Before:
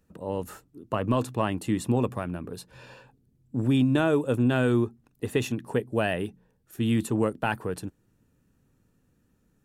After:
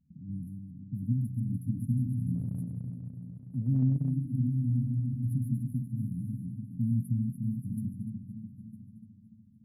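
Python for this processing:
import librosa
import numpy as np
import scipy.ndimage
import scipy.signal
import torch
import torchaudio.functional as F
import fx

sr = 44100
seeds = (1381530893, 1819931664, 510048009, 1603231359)

y = fx.reverse_delay_fb(x, sr, ms=147, feedback_pct=75, wet_db=-5.5)
y = fx.highpass(y, sr, hz=52.0, slope=6)
y = fx.high_shelf(y, sr, hz=8600.0, db=-6.0)
y = fx.rider(y, sr, range_db=3, speed_s=0.5)
y = fx.peak_eq(y, sr, hz=140.0, db=10.0, octaves=0.73)
y = fx.env_lowpass(y, sr, base_hz=1100.0, full_db=-20.5)
y = fx.brickwall_bandstop(y, sr, low_hz=280.0, high_hz=9700.0)
y = fx.transient(y, sr, attack_db=-2, sustain_db=-7, at=(2.34, 4.1), fade=0.02)
y = fx.echo_feedback(y, sr, ms=955, feedback_pct=24, wet_db=-17.5)
y = F.gain(torch.from_numpy(y), -7.5).numpy()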